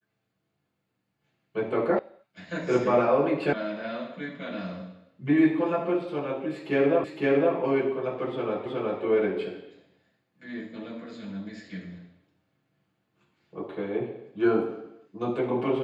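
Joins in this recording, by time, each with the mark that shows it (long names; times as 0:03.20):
0:01.99: cut off before it has died away
0:03.53: cut off before it has died away
0:07.04: the same again, the last 0.51 s
0:08.66: the same again, the last 0.37 s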